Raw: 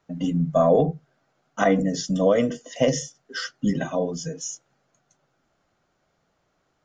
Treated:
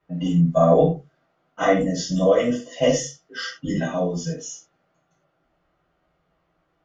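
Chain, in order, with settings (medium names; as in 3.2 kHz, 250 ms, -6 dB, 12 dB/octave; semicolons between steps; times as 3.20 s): gated-style reverb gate 130 ms falling, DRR -8 dB; level-controlled noise filter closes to 2.9 kHz, open at -9.5 dBFS; trim -7 dB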